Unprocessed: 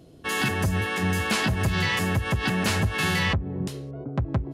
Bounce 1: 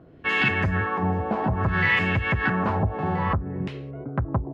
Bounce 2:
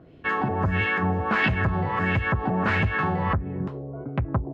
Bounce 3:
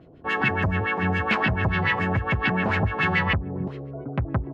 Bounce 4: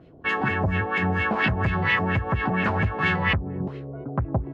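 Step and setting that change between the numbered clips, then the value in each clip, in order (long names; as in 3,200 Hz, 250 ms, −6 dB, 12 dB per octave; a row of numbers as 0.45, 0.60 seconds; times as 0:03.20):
auto-filter low-pass, speed: 0.59, 1.5, 7, 4.3 Hertz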